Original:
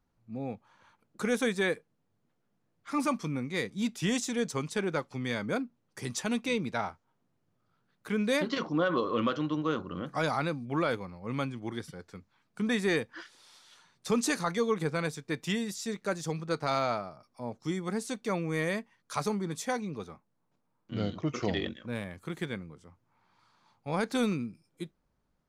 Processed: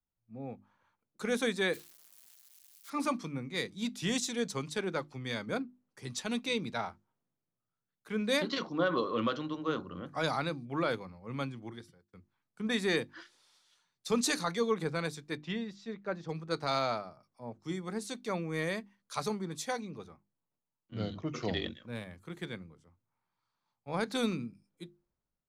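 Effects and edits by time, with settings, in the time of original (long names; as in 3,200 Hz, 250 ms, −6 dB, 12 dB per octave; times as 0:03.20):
0:01.73–0:02.90: spike at every zero crossing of −36.5 dBFS
0:05.59–0:06.29: high-shelf EQ 5,400 Hz −5.5 dB
0:11.62–0:12.13: fade out
0:15.37–0:16.29: high-frequency loss of the air 220 metres
whole clip: mains-hum notches 50/100/150/200/250/300/350 Hz; dynamic equaliser 4,000 Hz, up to +6 dB, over −57 dBFS, Q 3.4; multiband upward and downward expander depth 40%; level −3 dB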